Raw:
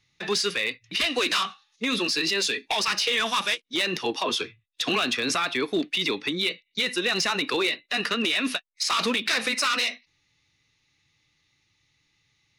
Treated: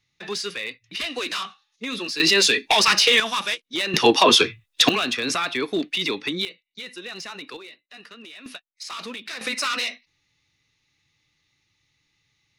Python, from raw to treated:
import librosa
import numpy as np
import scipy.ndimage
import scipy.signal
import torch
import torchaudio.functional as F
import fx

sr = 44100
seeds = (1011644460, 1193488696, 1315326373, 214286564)

y = fx.gain(x, sr, db=fx.steps((0.0, -4.0), (2.2, 8.0), (3.2, 0.0), (3.94, 12.0), (4.89, 1.0), (6.45, -11.0), (7.57, -18.0), (8.46, -10.0), (9.41, -1.0)))